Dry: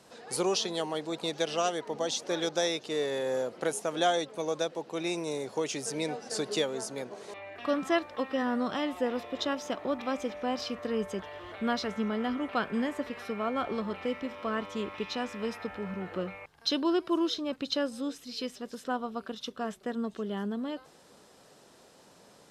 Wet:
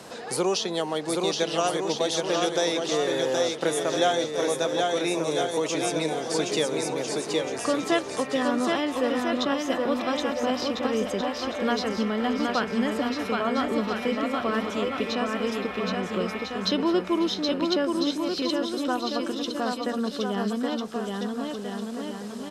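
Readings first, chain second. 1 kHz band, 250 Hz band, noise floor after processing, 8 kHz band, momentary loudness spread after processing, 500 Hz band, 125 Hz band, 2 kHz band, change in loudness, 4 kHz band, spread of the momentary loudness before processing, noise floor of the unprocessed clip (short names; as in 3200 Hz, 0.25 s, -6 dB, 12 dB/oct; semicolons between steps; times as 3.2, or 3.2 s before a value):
+6.0 dB, +6.5 dB, -35 dBFS, +6.0 dB, 4 LU, +6.5 dB, +6.5 dB, +6.5 dB, +6.0 dB, +6.0 dB, 9 LU, -58 dBFS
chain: bouncing-ball echo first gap 0.77 s, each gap 0.75×, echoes 5; three-band squash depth 40%; gain +4 dB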